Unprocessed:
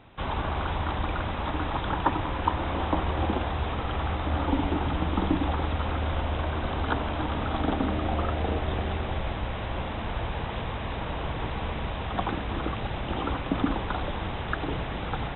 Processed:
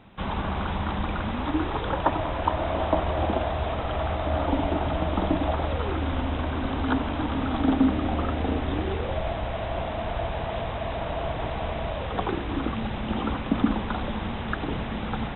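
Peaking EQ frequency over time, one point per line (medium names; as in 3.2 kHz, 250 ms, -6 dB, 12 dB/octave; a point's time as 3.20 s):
peaking EQ +12.5 dB 0.26 oct
1.23 s 200 Hz
2.08 s 640 Hz
5.65 s 640 Hz
6.09 s 260 Hz
8.70 s 260 Hz
9.20 s 660 Hz
11.88 s 660 Hz
12.77 s 220 Hz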